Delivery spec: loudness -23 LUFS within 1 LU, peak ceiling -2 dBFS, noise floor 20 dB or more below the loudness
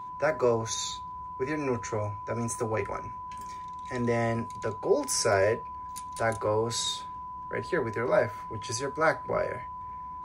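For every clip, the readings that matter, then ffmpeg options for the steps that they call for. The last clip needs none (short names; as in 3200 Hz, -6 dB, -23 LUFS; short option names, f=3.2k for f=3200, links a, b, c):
steady tone 1000 Hz; tone level -37 dBFS; loudness -30.0 LUFS; peak -11.0 dBFS; loudness target -23.0 LUFS
-> -af "bandreject=f=1k:w=30"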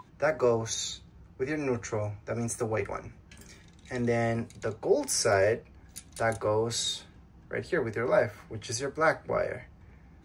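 steady tone none; loudness -30.0 LUFS; peak -11.5 dBFS; loudness target -23.0 LUFS
-> -af "volume=7dB"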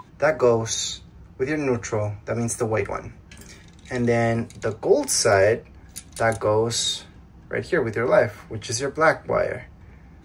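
loudness -23.0 LUFS; peak -4.5 dBFS; noise floor -48 dBFS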